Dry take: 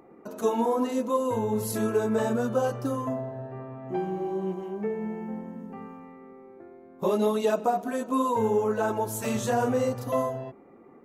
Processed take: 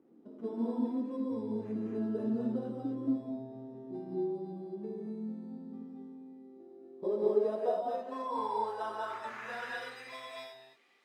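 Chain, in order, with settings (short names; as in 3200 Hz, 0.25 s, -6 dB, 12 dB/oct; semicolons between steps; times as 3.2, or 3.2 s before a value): bell 1900 Hz +6.5 dB 0.23 oct; sample-and-hold 10×; non-linear reverb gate 0.27 s rising, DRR -2 dB; bit-crush 9-bit; band-pass sweep 270 Hz -> 2200 Hz, 6.46–10.21; gain -5.5 dB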